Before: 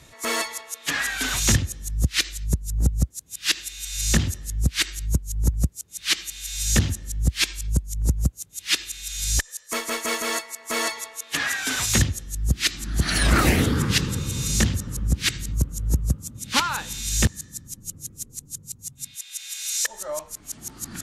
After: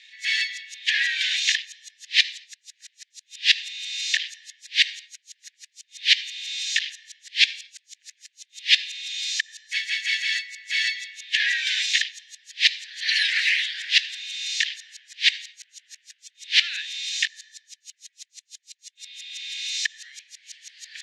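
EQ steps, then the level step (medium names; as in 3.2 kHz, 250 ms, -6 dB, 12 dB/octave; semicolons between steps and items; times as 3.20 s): steep high-pass 1.7 kHz 96 dB/octave; tape spacing loss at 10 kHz 30 dB; peaking EQ 3.7 kHz +13 dB 1.9 oct; +4.5 dB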